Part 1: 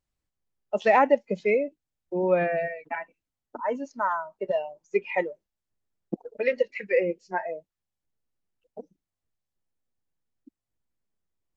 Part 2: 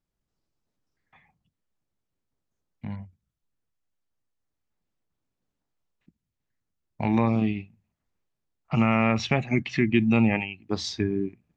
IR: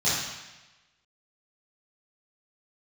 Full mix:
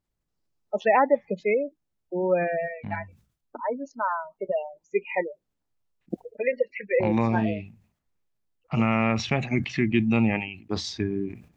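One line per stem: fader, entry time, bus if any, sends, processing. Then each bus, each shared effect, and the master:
-0.5 dB, 0.00 s, no send, spectral gate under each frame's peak -25 dB strong
-1.5 dB, 0.00 s, no send, decay stretcher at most 120 dB/s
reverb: none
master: none

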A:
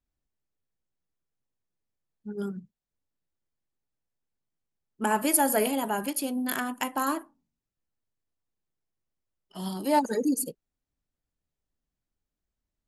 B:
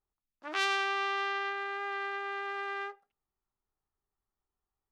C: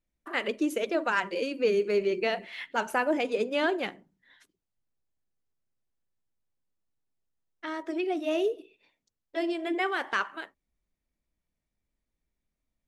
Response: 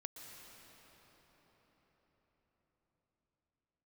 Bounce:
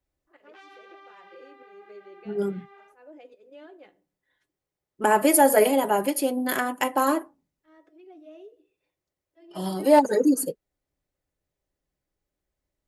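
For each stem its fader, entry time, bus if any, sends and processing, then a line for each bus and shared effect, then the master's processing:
+3.0 dB, 0.00 s, no bus, no send, peaking EQ 2 kHz +5 dB 0.33 oct
-6.5 dB, 0.00 s, bus A, no send, three-phase chorus
-8.5 dB, 0.00 s, bus A, no send, slow attack 288 ms; feedback comb 100 Hz, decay 0.15 s, harmonics odd, mix 60%
bus A: 0.0 dB, tone controls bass 0 dB, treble -4 dB; compression 2:1, threshold -57 dBFS, peak gain reduction 12 dB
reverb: none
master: peaking EQ 510 Hz +8.5 dB 1.3 oct; comb of notches 230 Hz; hard clipper -6.5 dBFS, distortion -36 dB

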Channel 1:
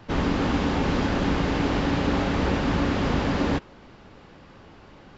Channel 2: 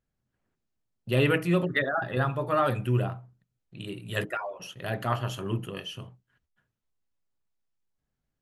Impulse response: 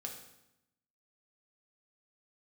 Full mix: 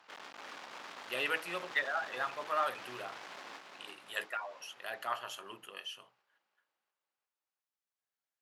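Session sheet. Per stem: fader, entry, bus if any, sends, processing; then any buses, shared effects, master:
-7.5 dB, 0.00 s, no send, echo send -5.5 dB, octave divider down 2 oct, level +1 dB; compression, threshold -22 dBFS, peak gain reduction 6 dB; one-sided clip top -46 dBFS, bottom -26.5 dBFS
-4.5 dB, 0.00 s, no send, no echo send, none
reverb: none
echo: feedback delay 346 ms, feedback 54%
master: high-pass 820 Hz 12 dB/octave

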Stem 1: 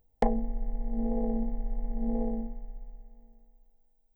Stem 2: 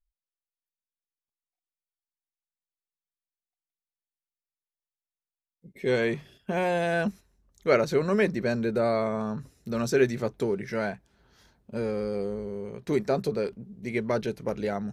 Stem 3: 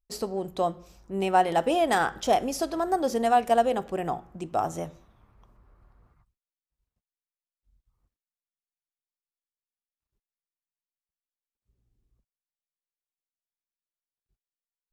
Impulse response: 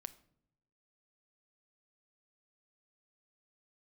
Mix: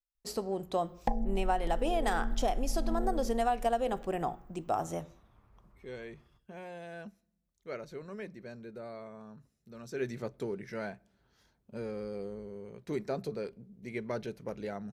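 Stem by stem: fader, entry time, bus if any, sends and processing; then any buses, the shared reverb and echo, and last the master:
+2.0 dB, 0.85 s, no send, Shepard-style flanger falling 0.66 Hz
9.84 s -21.5 dB -> 10.11 s -11.5 dB, 0.00 s, send -4.5 dB, none
-3.5 dB, 0.15 s, no send, none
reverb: on, pre-delay 6 ms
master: compression 6:1, threshold -25 dBFS, peak gain reduction 8 dB

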